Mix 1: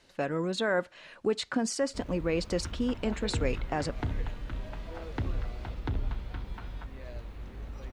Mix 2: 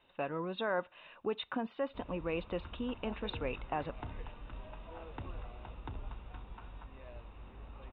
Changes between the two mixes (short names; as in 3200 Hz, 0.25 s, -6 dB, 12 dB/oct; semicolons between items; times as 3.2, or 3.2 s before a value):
second sound -4.0 dB; master: add rippled Chebyshev low-pass 3800 Hz, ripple 9 dB